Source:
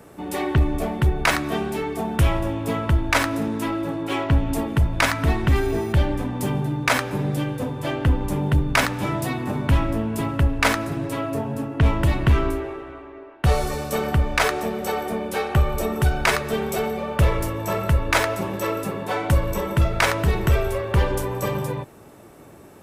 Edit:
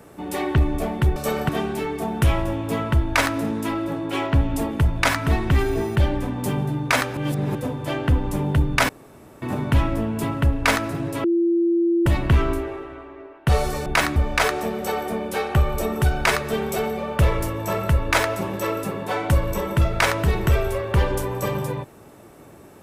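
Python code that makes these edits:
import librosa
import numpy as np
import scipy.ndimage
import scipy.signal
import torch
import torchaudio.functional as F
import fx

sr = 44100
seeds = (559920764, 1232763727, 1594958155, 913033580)

y = fx.edit(x, sr, fx.swap(start_s=1.16, length_s=0.3, other_s=13.83, other_length_s=0.33),
    fx.reverse_span(start_s=7.14, length_s=0.38),
    fx.room_tone_fill(start_s=8.86, length_s=0.53),
    fx.bleep(start_s=11.21, length_s=0.82, hz=340.0, db=-16.0), tone=tone)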